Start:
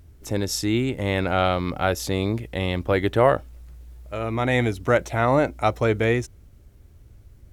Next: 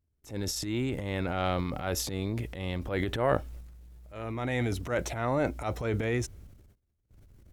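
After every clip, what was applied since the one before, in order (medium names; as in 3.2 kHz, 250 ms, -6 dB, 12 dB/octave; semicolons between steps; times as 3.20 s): transient shaper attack -9 dB, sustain +9 dB; gate with hold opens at -39 dBFS; trim -8 dB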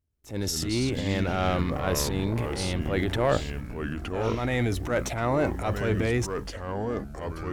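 waveshaping leveller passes 1; ever faster or slower copies 102 ms, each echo -4 st, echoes 3, each echo -6 dB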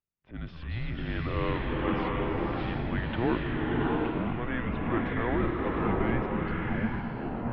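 distance through air 150 m; mistuned SSB -240 Hz 250–3400 Hz; swelling reverb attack 720 ms, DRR -2.5 dB; trim -3 dB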